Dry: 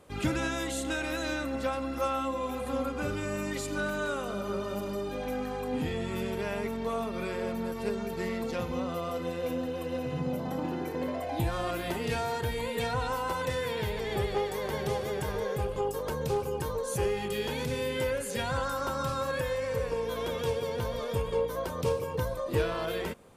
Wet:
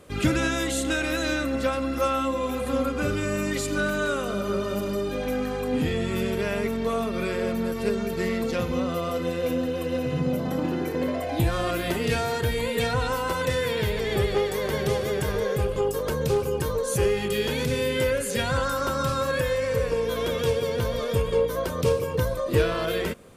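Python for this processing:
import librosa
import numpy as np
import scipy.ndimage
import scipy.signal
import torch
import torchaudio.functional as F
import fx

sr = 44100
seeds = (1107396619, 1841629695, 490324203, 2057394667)

y = fx.peak_eq(x, sr, hz=860.0, db=-7.5, octaves=0.48)
y = y * 10.0 ** (7.0 / 20.0)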